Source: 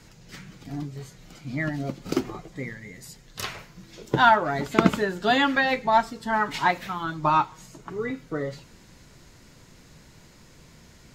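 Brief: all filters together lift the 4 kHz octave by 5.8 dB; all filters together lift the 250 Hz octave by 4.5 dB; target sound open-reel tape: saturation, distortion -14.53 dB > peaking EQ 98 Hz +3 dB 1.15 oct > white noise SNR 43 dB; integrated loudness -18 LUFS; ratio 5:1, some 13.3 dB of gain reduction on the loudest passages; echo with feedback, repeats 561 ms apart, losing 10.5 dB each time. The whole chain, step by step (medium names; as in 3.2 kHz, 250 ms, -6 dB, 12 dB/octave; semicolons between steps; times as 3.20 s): peaking EQ 250 Hz +5 dB; peaking EQ 4 kHz +7 dB; compression 5:1, threshold -25 dBFS; feedback delay 561 ms, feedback 30%, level -10.5 dB; saturation -22.5 dBFS; peaking EQ 98 Hz +3 dB 1.15 oct; white noise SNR 43 dB; trim +14.5 dB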